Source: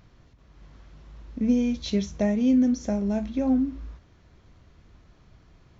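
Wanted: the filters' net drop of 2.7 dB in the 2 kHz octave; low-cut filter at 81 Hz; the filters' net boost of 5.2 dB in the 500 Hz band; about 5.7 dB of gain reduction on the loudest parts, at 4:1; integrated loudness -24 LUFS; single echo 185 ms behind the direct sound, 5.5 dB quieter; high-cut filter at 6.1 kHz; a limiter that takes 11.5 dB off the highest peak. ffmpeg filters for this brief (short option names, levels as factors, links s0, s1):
-af "highpass=81,lowpass=6100,equalizer=f=500:t=o:g=6.5,equalizer=f=2000:t=o:g=-3.5,acompressor=threshold=0.0794:ratio=4,alimiter=level_in=1.06:limit=0.0631:level=0:latency=1,volume=0.944,aecho=1:1:185:0.531,volume=2.24"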